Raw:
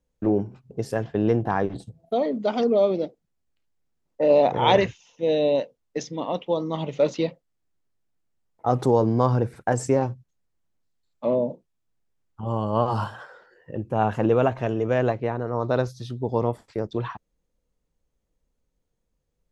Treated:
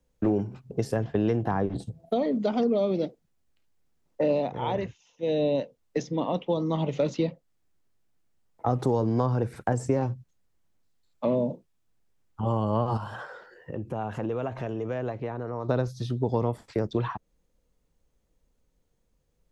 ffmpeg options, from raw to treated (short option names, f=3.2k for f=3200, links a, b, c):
-filter_complex "[0:a]asettb=1/sr,asplit=3[a][b][c];[a]atrim=end=12.974[d];[b]atrim=start=12.97:end=15.69,asetpts=PTS-STARTPTS,afade=t=in:d=0.004:c=qsin,afade=t=out:st=2.716:d=0.004:c=qsin,acompressor=threshold=-37dB:ratio=2.5:attack=3.2:release=140:knee=1:detection=peak[e];[c]atrim=start=15.686[f];[d][e]acrossfade=d=0.004:c1=hsin:c2=qsin[g];[g][f]acrossfade=d=0.004:c1=qsin:c2=hsin,asplit=3[h][i][j];[h]atrim=end=4.52,asetpts=PTS-STARTPTS,afade=t=out:st=4.29:d=0.23:silence=0.298538[k];[i]atrim=start=4.52:end=5.2,asetpts=PTS-STARTPTS,volume=-10.5dB[l];[j]atrim=start=5.2,asetpts=PTS-STARTPTS,afade=t=in:d=0.23:silence=0.298538[m];[k][l][m]concat=n=3:v=0:a=1,acrossover=split=270|1300[n][o][p];[n]acompressor=threshold=-31dB:ratio=4[q];[o]acompressor=threshold=-32dB:ratio=4[r];[p]acompressor=threshold=-48dB:ratio=4[s];[q][r][s]amix=inputs=3:normalize=0,volume=4.5dB"